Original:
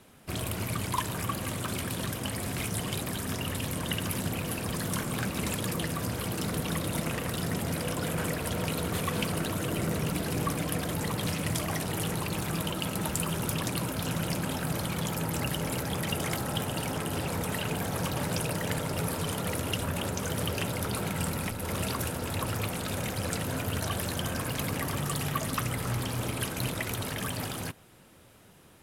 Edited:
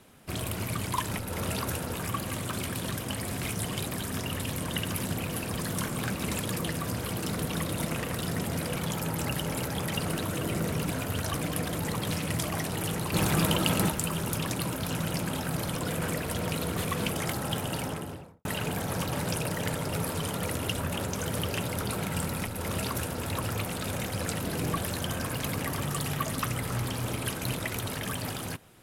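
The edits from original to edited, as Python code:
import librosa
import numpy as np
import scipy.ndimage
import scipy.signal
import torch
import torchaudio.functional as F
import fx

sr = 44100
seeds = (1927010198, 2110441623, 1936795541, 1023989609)

y = fx.studio_fade_out(x, sr, start_s=16.79, length_s=0.7)
y = fx.edit(y, sr, fx.swap(start_s=7.91, length_s=1.36, other_s=14.91, other_length_s=1.24),
    fx.swap(start_s=10.18, length_s=0.32, other_s=23.49, other_length_s=0.43),
    fx.clip_gain(start_s=12.29, length_s=0.76, db=6.5),
    fx.duplicate(start_s=21.43, length_s=0.85, to_s=1.11), tone=tone)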